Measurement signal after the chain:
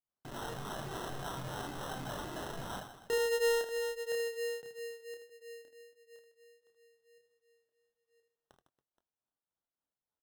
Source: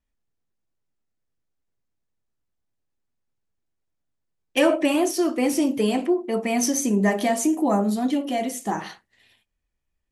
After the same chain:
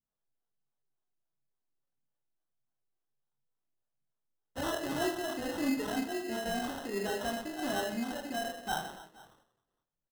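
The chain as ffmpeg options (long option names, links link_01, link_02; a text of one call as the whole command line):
ffmpeg -i in.wav -filter_complex "[0:a]flanger=delay=0.7:depth=2.6:regen=5:speed=1.5:shape=triangular,lowpass=frequency=3800:width_type=q:width=2,acrossover=split=450[link_01][link_02];[link_01]aeval=exprs='val(0)*(1-0.7/2+0.7/2*cos(2*PI*3.5*n/s))':channel_layout=same[link_03];[link_02]aeval=exprs='val(0)*(1-0.7/2-0.7/2*cos(2*PI*3.5*n/s))':channel_layout=same[link_04];[link_03][link_04]amix=inputs=2:normalize=0,equalizer=frequency=760:width_type=o:width=0.66:gain=7.5,asoftclip=type=tanh:threshold=-24.5dB,lowshelf=frequency=100:width_type=q:width=3:gain=-10,asplit=2[link_05][link_06];[link_06]adelay=22,volume=-11dB[link_07];[link_05][link_07]amix=inputs=2:normalize=0,asplit=2[link_08][link_09];[link_09]aecho=0:1:30|78|154.8|277.7|474.3:0.631|0.398|0.251|0.158|0.1[link_10];[link_08][link_10]amix=inputs=2:normalize=0,flanger=delay=1.6:depth=2.1:regen=72:speed=0.26:shape=triangular,acrusher=samples=19:mix=1:aa=0.000001,volume=-2.5dB" out.wav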